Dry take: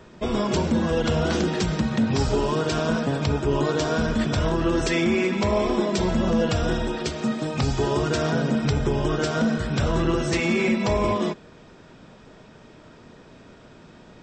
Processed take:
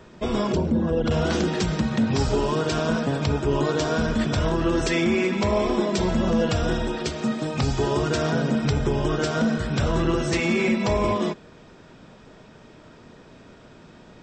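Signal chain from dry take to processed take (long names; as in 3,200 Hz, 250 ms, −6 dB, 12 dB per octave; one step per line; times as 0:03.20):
0:00.52–0:01.11: spectral envelope exaggerated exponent 1.5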